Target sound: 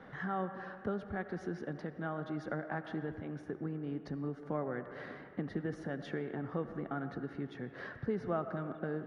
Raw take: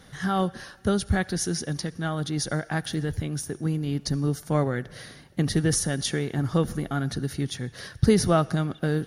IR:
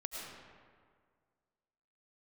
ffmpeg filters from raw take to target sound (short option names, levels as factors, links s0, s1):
-filter_complex "[0:a]lowpass=3400,acompressor=threshold=0.01:ratio=2.5,acrossover=split=180 2300:gain=0.2 1 0.178[s0][s1][s2];[s0][s1][s2]amix=inputs=3:normalize=0,asplit=2[s3][s4];[1:a]atrim=start_sample=2205,lowpass=2100,lowshelf=f=360:g=-7.5[s5];[s4][s5]afir=irnorm=-1:irlink=0,volume=0.708[s6];[s3][s6]amix=inputs=2:normalize=0"